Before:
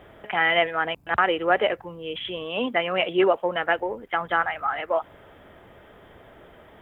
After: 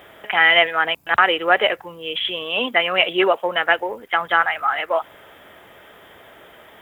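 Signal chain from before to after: tilt EQ +3 dB/octave; trim +5 dB

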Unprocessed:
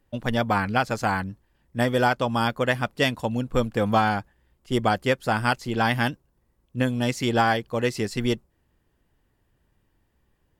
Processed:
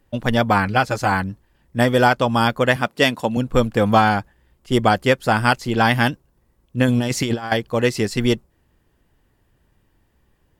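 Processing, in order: 0.68–1.12 s: comb of notches 230 Hz; 2.76–3.37 s: high-pass 160 Hz 12 dB/octave; 6.88–7.52 s: compressor with a negative ratio -26 dBFS, ratio -0.5; trim +6 dB

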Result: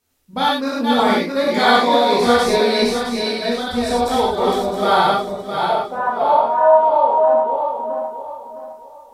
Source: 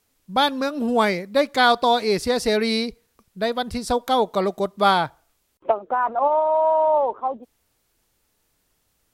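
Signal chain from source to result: backward echo that repeats 331 ms, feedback 56%, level -2 dB; gated-style reverb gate 140 ms flat, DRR -6.5 dB; trim -6 dB

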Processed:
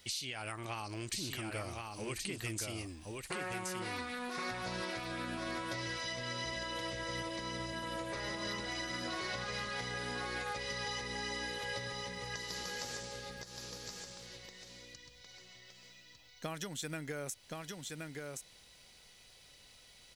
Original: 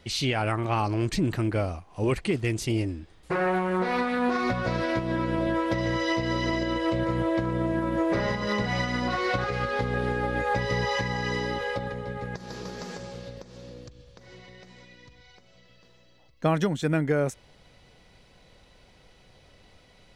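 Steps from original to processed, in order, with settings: pre-emphasis filter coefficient 0.9; compression, threshold -44 dBFS, peak gain reduction 12.5 dB; delay 1073 ms -3.5 dB; trim +6.5 dB

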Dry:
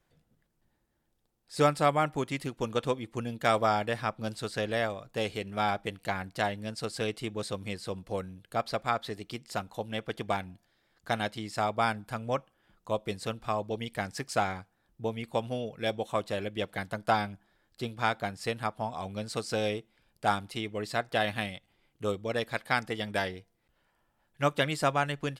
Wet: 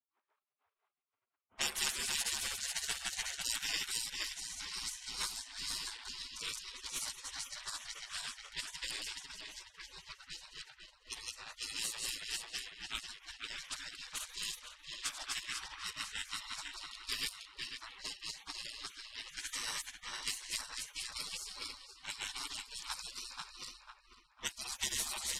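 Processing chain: backward echo that repeats 249 ms, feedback 67%, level -0.5 dB; spectral gate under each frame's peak -30 dB weak; level-controlled noise filter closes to 1.1 kHz, open at -44.5 dBFS; trim +9.5 dB

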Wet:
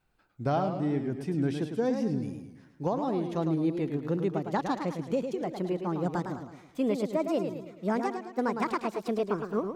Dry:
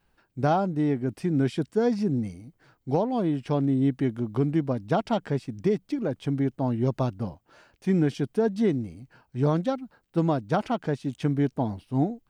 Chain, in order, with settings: gliding tape speed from 93% -> 159%; modulated delay 108 ms, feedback 47%, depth 127 cents, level -7 dB; trim -5 dB

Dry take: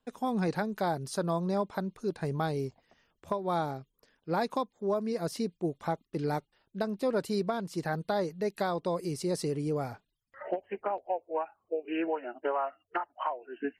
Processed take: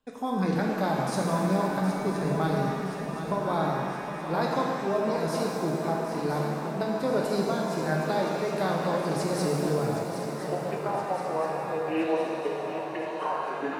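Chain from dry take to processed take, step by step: shuffle delay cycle 1021 ms, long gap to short 3:1, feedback 58%, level -10 dB; spectral replace 12.19–13.13 s, 470–1700 Hz after; pitch-shifted reverb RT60 2.2 s, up +7 st, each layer -8 dB, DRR -1.5 dB

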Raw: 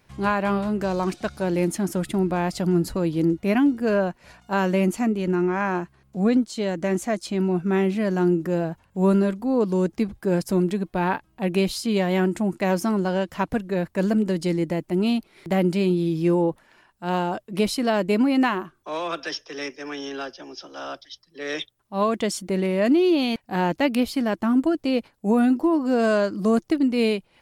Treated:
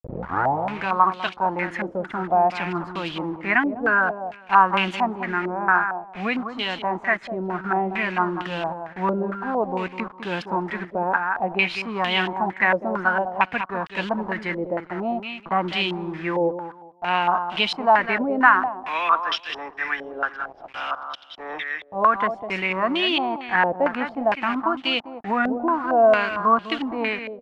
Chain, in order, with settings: tape start-up on the opening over 0.72 s; high-pass 200 Hz 6 dB/octave; resonant low shelf 650 Hz -8.5 dB, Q 1.5; band-stop 600 Hz, Q 12; bit crusher 7-bit; on a send: feedback delay 202 ms, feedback 22%, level -9.5 dB; on the sum: step-sequenced low-pass 4.4 Hz 550–3100 Hz; trim +3 dB

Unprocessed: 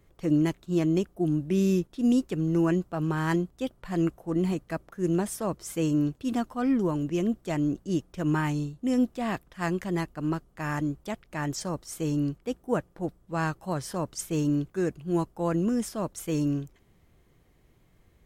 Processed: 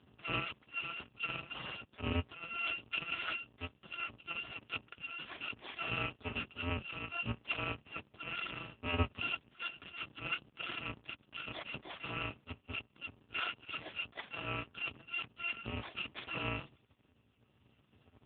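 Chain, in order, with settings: bit-reversed sample order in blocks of 256 samples; tremolo 0.67 Hz, depth 41%; trim +8 dB; AMR-NB 4.75 kbps 8 kHz

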